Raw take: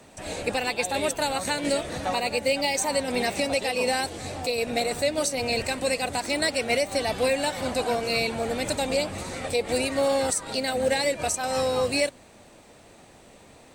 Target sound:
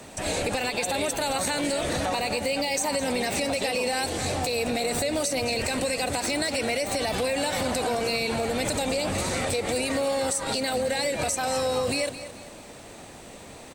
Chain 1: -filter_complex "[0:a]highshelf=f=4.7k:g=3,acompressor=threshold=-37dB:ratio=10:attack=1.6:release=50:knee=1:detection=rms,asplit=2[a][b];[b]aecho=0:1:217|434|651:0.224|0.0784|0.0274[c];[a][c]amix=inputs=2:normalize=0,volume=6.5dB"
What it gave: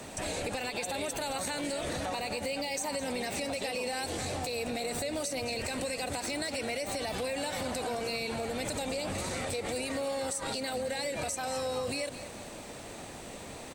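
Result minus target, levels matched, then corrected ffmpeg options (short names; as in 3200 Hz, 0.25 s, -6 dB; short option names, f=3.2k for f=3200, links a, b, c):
compressor: peak gain reduction +7.5 dB
-filter_complex "[0:a]highshelf=f=4.7k:g=3,acompressor=threshold=-28.5dB:ratio=10:attack=1.6:release=50:knee=1:detection=rms,asplit=2[a][b];[b]aecho=0:1:217|434|651:0.224|0.0784|0.0274[c];[a][c]amix=inputs=2:normalize=0,volume=6.5dB"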